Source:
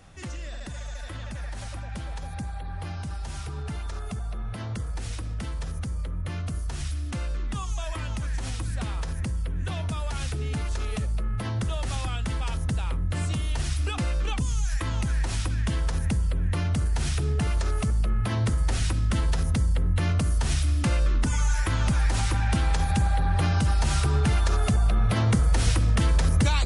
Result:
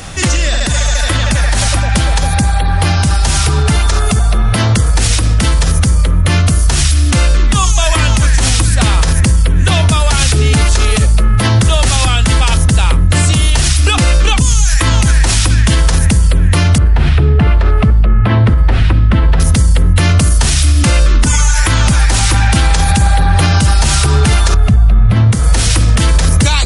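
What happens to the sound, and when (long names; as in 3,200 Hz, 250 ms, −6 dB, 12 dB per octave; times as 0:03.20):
0:16.78–0:19.40: high-frequency loss of the air 470 metres
0:24.54–0:25.32: bass and treble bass +11 dB, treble −13 dB
whole clip: downward compressor, threshold −29 dBFS; high-shelf EQ 2,500 Hz +8 dB; boost into a limiter +24 dB; level −1 dB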